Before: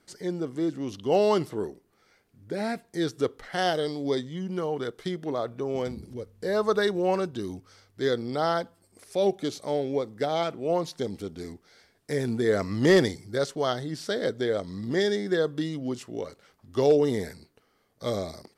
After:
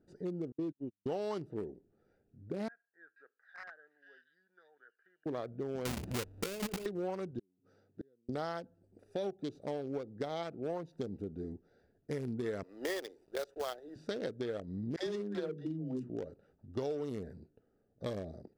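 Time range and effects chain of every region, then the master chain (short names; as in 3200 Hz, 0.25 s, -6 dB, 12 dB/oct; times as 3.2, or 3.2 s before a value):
0.52–1.06 gate -31 dBFS, range -52 dB + air absorption 80 m
2.68–5.26 ladder band-pass 1700 Hz, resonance 80% + bands offset in time lows, highs 0.48 s, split 2300 Hz
5.85–6.86 half-waves squared off + high shelf 2100 Hz +9 dB + negative-ratio compressor -27 dBFS
7.39–8.29 HPF 130 Hz 24 dB/oct + flipped gate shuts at -29 dBFS, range -40 dB
12.63–13.96 HPF 430 Hz 24 dB/oct + companded quantiser 4-bit
14.96–16.1 notches 60/120/180/240/300/360/420/480/540/600 Hz + dispersion lows, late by 0.112 s, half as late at 410 Hz
whole clip: Wiener smoothing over 41 samples; compressor 6:1, threshold -34 dBFS; gain -1 dB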